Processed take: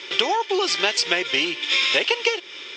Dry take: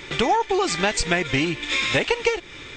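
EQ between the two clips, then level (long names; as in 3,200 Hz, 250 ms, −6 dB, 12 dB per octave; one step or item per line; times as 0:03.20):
loudspeaker in its box 320–7,000 Hz, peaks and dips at 380 Hz +8 dB, 540 Hz +5 dB, 980 Hz +5 dB, 1,400 Hz +3 dB, 3,100 Hz +6 dB, 5,200 Hz +9 dB
parametric band 2,900 Hz +6.5 dB 1.3 octaves
high-shelf EQ 4,500 Hz +6.5 dB
−6.5 dB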